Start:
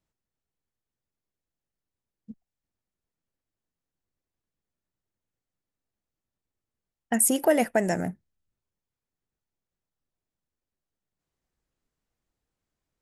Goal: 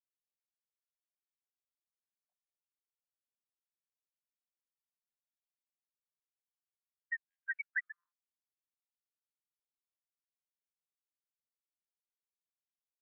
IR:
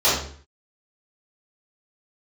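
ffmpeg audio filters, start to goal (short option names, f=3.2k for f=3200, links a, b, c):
-af "afftfilt=real='re*gte(hypot(re,im),0.178)':imag='im*gte(hypot(re,im),0.178)':win_size=1024:overlap=0.75,afftfilt=real='re*between(b*sr/1024,810*pow(2300/810,0.5+0.5*sin(2*PI*0.31*pts/sr))/1.41,810*pow(2300/810,0.5+0.5*sin(2*PI*0.31*pts/sr))*1.41)':imag='im*between(b*sr/1024,810*pow(2300/810,0.5+0.5*sin(2*PI*0.31*pts/sr))/1.41,810*pow(2300/810,0.5+0.5*sin(2*PI*0.31*pts/sr))*1.41)':win_size=1024:overlap=0.75,volume=1.5dB"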